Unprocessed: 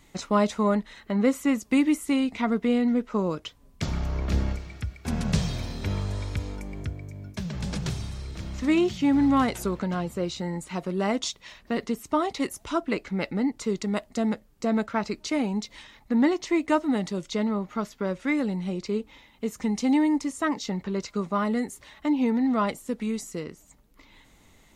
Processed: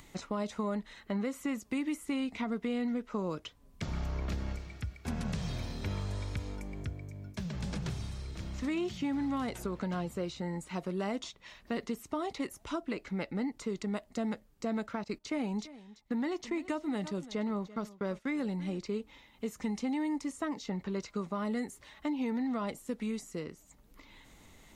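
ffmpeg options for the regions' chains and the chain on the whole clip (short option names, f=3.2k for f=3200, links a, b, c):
-filter_complex "[0:a]asettb=1/sr,asplit=3[a][b][c];[a]atrim=end=15.044[d];[b]atrim=start=15.04:end=18.79,asetpts=PTS-STARTPTS,afade=t=in:d=0.004:c=qsin,afade=t=out:st=3.746:d=0.004:c=qsin,agate=range=-16dB:threshold=-42dB:ratio=16:release=100:detection=peak,aecho=1:1:337:0.1,atrim=end_sample=165375[e];[c]atrim=start=18.786[f];[d][e]acrossfade=d=0.004:c1=hsin:c2=qsin[g];[g][f]acrossfade=d=0.004:c1=qsin:c2=hsin,acompressor=mode=upward:threshold=-44dB:ratio=2.5,alimiter=limit=-18dB:level=0:latency=1:release=163,acrossover=split=790|2700[h][i][j];[h]acompressor=threshold=-26dB:ratio=4[k];[i]acompressor=threshold=-36dB:ratio=4[l];[j]acompressor=threshold=-43dB:ratio=4[m];[k][l][m]amix=inputs=3:normalize=0,volume=-5dB"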